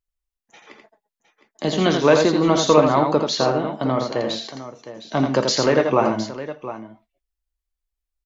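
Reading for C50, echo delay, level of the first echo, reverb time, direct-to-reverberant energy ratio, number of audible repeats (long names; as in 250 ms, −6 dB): no reverb audible, 84 ms, −5.0 dB, no reverb audible, no reverb audible, 2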